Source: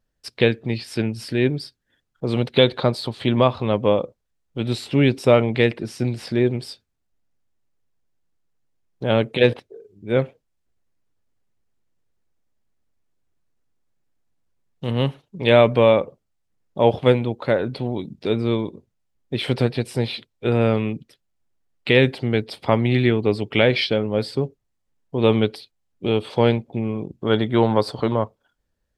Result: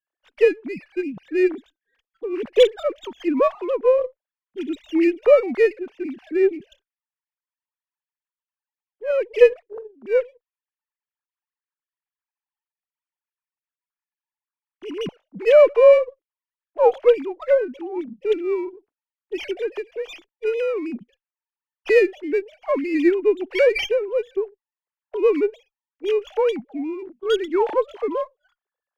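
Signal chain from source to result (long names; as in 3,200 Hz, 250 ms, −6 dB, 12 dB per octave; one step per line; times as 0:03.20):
three sine waves on the formant tracks
windowed peak hold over 3 samples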